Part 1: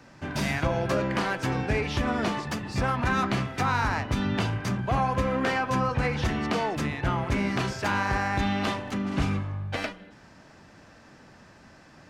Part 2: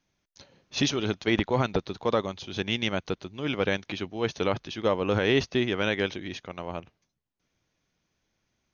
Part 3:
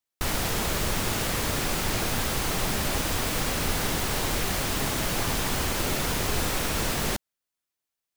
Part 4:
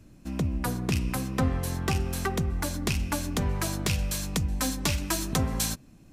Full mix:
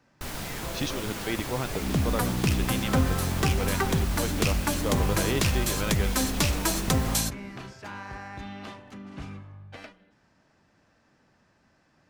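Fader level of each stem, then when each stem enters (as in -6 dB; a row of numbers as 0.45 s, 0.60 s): -13.0 dB, -6.5 dB, -9.0 dB, +2.0 dB; 0.00 s, 0.00 s, 0.00 s, 1.55 s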